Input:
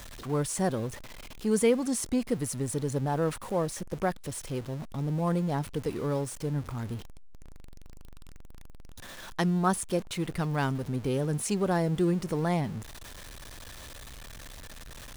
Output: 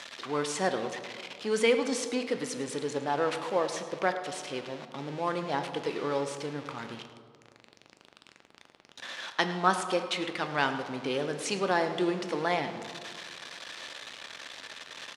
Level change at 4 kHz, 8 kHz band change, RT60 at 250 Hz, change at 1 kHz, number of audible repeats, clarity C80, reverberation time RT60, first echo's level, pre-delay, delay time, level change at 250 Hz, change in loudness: +7.0 dB, -3.5 dB, 2.0 s, +3.5 dB, 1, 9.5 dB, 2.0 s, -15.5 dB, 3 ms, 107 ms, -5.0 dB, -1.5 dB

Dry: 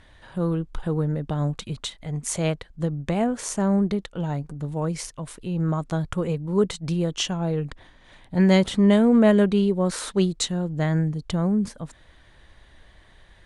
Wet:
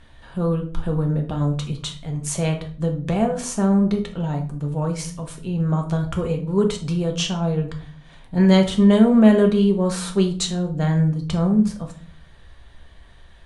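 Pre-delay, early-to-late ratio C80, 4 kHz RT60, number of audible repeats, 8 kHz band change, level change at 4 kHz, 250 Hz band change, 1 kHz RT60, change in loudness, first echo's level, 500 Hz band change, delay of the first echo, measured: 4 ms, 15.0 dB, 0.35 s, no echo, +1.5 dB, +2.0 dB, +3.5 dB, 0.40 s, +3.0 dB, no echo, +2.5 dB, no echo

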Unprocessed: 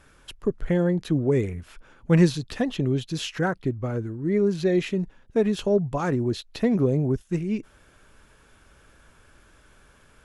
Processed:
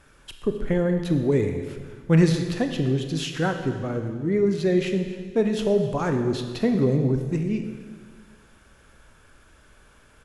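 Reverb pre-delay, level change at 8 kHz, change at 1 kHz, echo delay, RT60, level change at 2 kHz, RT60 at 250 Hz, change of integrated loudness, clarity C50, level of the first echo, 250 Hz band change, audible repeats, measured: 22 ms, +1.0 dB, +1.0 dB, 262 ms, 1.7 s, +1.0 dB, 1.8 s, +1.0 dB, 6.5 dB, -19.5 dB, +1.0 dB, 1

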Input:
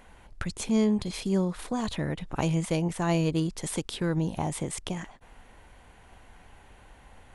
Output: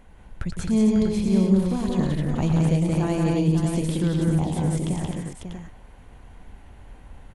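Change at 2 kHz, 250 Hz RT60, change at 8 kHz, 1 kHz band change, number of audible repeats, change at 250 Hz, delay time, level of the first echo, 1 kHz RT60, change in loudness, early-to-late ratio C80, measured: -0.5 dB, no reverb, -1.0 dB, +1.0 dB, 5, +7.5 dB, 110 ms, -7.0 dB, no reverb, +6.5 dB, no reverb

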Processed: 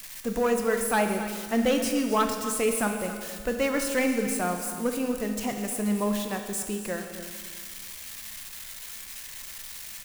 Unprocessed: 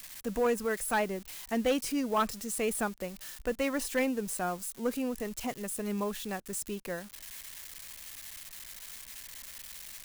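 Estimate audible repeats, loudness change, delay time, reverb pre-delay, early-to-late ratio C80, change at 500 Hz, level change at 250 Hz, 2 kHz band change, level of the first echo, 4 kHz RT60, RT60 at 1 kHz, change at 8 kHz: 1, +5.5 dB, 271 ms, 9 ms, 6.0 dB, +5.0 dB, +6.5 dB, +5.5 dB, -13.5 dB, 1.8 s, 1.8 s, +5.5 dB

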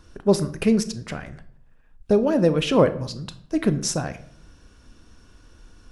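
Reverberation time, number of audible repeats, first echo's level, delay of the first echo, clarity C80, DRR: 0.60 s, no echo, no echo, no echo, 18.5 dB, 11.5 dB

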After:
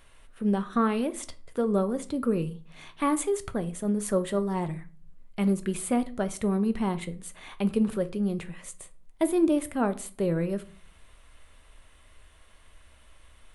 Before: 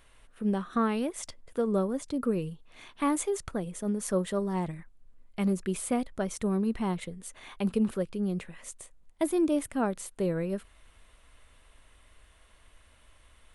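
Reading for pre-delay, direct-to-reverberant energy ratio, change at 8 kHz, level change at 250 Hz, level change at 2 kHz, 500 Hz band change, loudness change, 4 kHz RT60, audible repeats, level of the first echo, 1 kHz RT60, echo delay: 4 ms, 10.5 dB, +1.0 dB, +2.5 dB, +2.0 dB, +2.5 dB, +2.5 dB, 0.30 s, no echo, no echo, 0.40 s, no echo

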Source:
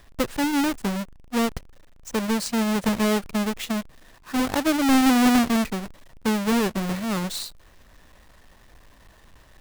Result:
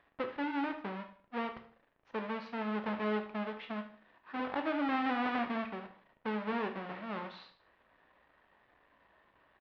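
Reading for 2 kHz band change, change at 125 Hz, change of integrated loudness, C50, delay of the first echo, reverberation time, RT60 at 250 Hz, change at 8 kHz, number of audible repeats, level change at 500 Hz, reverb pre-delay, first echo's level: -10.0 dB, -16.5 dB, -13.5 dB, 9.5 dB, 75 ms, 0.45 s, 0.50 s, under -40 dB, 3, -10.5 dB, 7 ms, -13.5 dB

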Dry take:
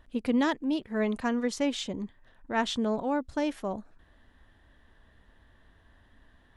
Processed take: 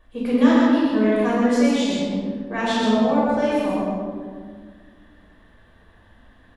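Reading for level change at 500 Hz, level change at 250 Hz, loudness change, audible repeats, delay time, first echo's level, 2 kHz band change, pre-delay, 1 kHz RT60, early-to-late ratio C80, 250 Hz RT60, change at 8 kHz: +10.5 dB, +11.5 dB, +10.0 dB, 1, 127 ms, -2.5 dB, +8.0 dB, 3 ms, 1.6 s, -2.0 dB, 2.3 s, +5.5 dB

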